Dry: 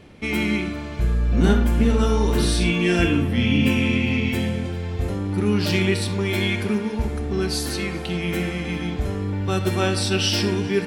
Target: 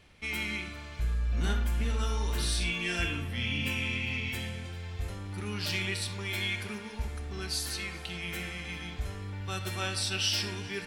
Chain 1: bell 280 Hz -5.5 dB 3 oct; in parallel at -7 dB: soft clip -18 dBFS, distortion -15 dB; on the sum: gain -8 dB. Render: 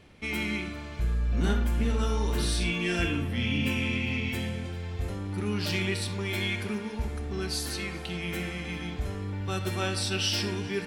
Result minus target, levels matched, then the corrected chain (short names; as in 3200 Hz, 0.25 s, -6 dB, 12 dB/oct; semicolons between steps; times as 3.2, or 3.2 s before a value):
250 Hz band +5.5 dB
bell 280 Hz -14.5 dB 3 oct; in parallel at -7 dB: soft clip -18 dBFS, distortion -20 dB; on the sum: gain -8 dB